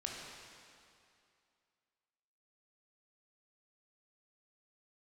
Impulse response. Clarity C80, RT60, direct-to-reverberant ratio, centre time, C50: 1.5 dB, 2.5 s, −2.0 dB, 118 ms, 0.0 dB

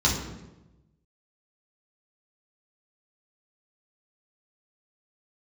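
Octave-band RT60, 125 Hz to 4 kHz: 1.4, 1.2, 1.1, 0.90, 0.80, 0.70 seconds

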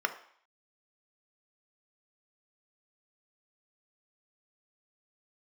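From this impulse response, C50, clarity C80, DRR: 12.5 dB, 16.0 dB, 7.5 dB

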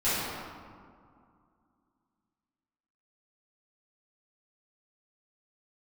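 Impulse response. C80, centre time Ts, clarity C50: −1.0 dB, 147 ms, −4.0 dB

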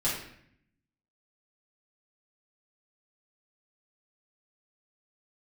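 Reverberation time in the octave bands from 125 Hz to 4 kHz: 1.1, 1.0, 0.70, 0.65, 0.75, 0.55 seconds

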